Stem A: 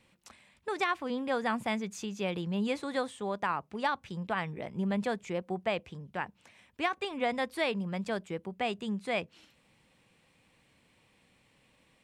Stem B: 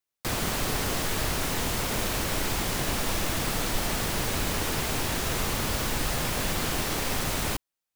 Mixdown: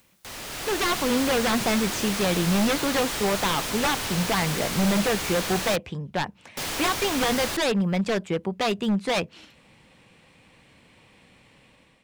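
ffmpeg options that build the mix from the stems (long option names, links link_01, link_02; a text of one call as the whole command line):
ffmpeg -i stem1.wav -i stem2.wav -filter_complex "[0:a]aeval=exprs='0.0355*(abs(mod(val(0)/0.0355+3,4)-2)-1)':channel_layout=same,highshelf=frequency=7900:gain=-7,volume=1.5dB[link_01];[1:a]acrossover=split=6900[link_02][link_03];[link_03]acompressor=threshold=-42dB:ratio=4:attack=1:release=60[link_04];[link_02][link_04]amix=inputs=2:normalize=0,aeval=exprs='0.0251*(abs(mod(val(0)/0.0251+3,4)-2)-1)':channel_layout=same,acompressor=mode=upward:threshold=-41dB:ratio=2.5,volume=-3.5dB,asplit=3[link_05][link_06][link_07];[link_05]atrim=end=5.76,asetpts=PTS-STARTPTS,afade=type=out:start_time=5.756:duration=0.004:curve=hsin[link_08];[link_06]atrim=start=5.76:end=6.57,asetpts=PTS-STARTPTS,volume=0[link_09];[link_07]atrim=start=6.57,asetpts=PTS-STARTPTS,afade=type=in:duration=0.004:curve=hsin[link_10];[link_08][link_09][link_10]concat=n=3:v=0:a=1[link_11];[link_01][link_11]amix=inputs=2:normalize=0,dynaudnorm=framelen=240:gausssize=5:maxgain=10dB" out.wav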